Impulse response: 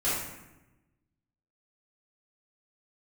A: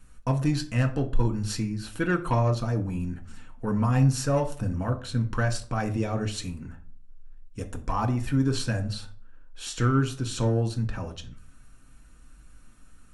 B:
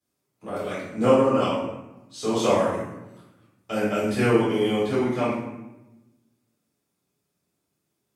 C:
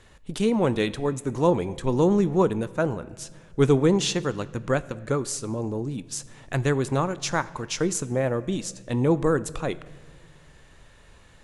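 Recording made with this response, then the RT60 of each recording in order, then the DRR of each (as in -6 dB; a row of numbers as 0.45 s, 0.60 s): B; 0.45 s, 1.0 s, no single decay rate; 3.5 dB, -12.0 dB, 15.5 dB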